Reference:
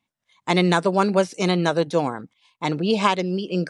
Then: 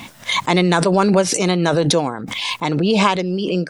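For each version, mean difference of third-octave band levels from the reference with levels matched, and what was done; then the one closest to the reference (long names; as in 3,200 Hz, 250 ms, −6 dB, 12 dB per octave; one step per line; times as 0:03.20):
3.0 dB: background raised ahead of every attack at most 23 dB per second
level +2.5 dB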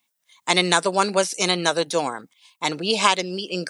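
5.5 dB: RIAA equalisation recording
level +1 dB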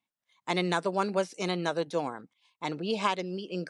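1.5 dB: low-shelf EQ 140 Hz −11.5 dB
level −8 dB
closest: third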